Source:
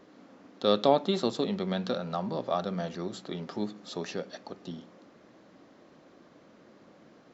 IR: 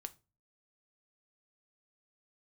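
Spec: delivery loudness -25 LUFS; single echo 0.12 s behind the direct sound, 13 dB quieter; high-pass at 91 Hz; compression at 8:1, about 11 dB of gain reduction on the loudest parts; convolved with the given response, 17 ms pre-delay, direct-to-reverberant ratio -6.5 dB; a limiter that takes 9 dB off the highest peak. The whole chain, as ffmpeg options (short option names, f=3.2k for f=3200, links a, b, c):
-filter_complex "[0:a]highpass=91,acompressor=threshold=-29dB:ratio=8,alimiter=level_in=2dB:limit=-24dB:level=0:latency=1,volume=-2dB,aecho=1:1:120:0.224,asplit=2[a][b];[1:a]atrim=start_sample=2205,adelay=17[c];[b][c]afir=irnorm=-1:irlink=0,volume=10.5dB[d];[a][d]amix=inputs=2:normalize=0,volume=6dB"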